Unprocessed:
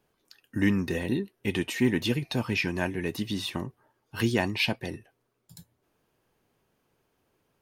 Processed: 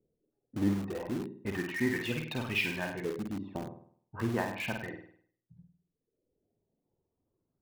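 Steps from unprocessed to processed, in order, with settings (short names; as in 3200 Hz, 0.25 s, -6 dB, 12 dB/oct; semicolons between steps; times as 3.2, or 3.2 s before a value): low-pass opened by the level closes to 370 Hz, open at -25.5 dBFS; reverb removal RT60 1.4 s; LFO low-pass saw up 0.33 Hz 470–4600 Hz; flutter echo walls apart 8.7 m, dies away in 0.56 s; in parallel at -10 dB: wrapped overs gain 26.5 dB; on the sum: gain -7 dB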